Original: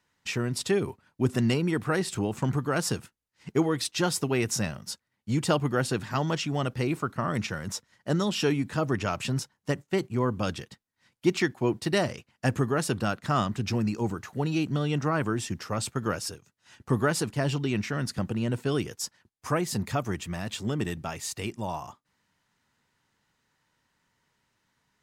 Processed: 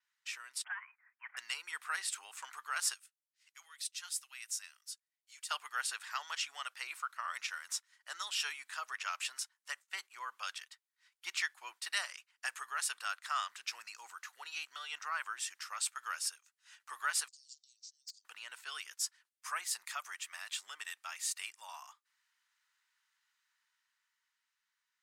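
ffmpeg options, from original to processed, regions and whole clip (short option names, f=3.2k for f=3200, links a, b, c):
-filter_complex "[0:a]asettb=1/sr,asplit=3[a][b][c];[a]atrim=end=0.644[d];[b]atrim=start=0.64:end=1.37,asetpts=PTS-STARTPTS,afade=t=in:d=0.004:c=qsin,afade=t=out:st=0.726:d=0.004:c=qsin,highpass=f=1.5k:w=0.5412,highpass=f=1.5k:w=1.3066,aeval=exprs='0.0841*sin(PI/2*1.78*val(0)/0.0841)':c=same,lowpass=f=2.9k:t=q:w=0.5098,lowpass=f=2.9k:t=q:w=0.6013,lowpass=f=2.9k:t=q:w=0.9,lowpass=f=2.9k:t=q:w=2.563,afreqshift=-3400[e];[c]atrim=start=1.366[f];[d][e]acrossfade=d=0.004:c1=hsin:c2=qsin[g];[g][f]acrossfade=d=0.004:c1=qsin:c2=hsin,asettb=1/sr,asplit=3[h][i][j];[h]atrim=end=2.944[k];[i]atrim=start=2.94:end=5.51,asetpts=PTS-STARTPTS,afade=t=in:d=0.004:c=qsin,afade=t=out:st=2.566:d=0.004:c=qsin,lowpass=f=4k:p=1,aderivative[l];[j]atrim=start=5.506[m];[k][l]acrossfade=d=0.004:c1=hsin:c2=qsin[n];[n][m]acrossfade=d=0.004:c1=qsin:c2=hsin,asettb=1/sr,asplit=3[o][p][q];[o]atrim=end=17.284[r];[p]atrim=start=17.28:end=18.25,asetpts=PTS-STARTPTS,afade=t=in:d=0.004:c=qsin,afade=t=out:st=0.966:d=0.004:c=qsin,acompressor=threshold=-35dB:ratio=3:attack=3.2:release=140:knee=1:detection=peak,asuperpass=centerf=5900:order=8:qfactor=1.6,aeval=exprs='0.02*(abs(mod(val(0)/0.02+3,4)-2)-1)':c=same[s];[q]atrim=start=18.246[t];[r][s]acrossfade=d=0.004:c1=hsin:c2=qsin[u];[u][t]acrossfade=d=0.004:c1=qsin:c2=hsin,highpass=f=1.2k:w=0.5412,highpass=f=1.2k:w=1.3066,adynamicequalizer=threshold=0.00282:dfrequency=8900:dqfactor=2.3:tfrequency=8900:tqfactor=2.3:attack=5:release=100:ratio=0.375:range=3:mode=boostabove:tftype=bell,dynaudnorm=f=130:g=21:m=5dB,volume=-9dB"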